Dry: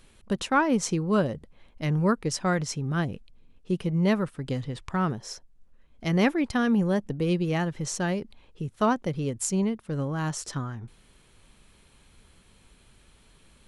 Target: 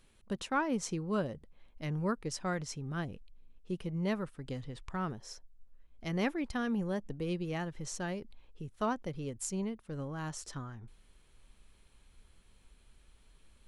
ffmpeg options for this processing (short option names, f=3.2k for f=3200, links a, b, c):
-af "asubboost=boost=2.5:cutoff=68,volume=-9dB"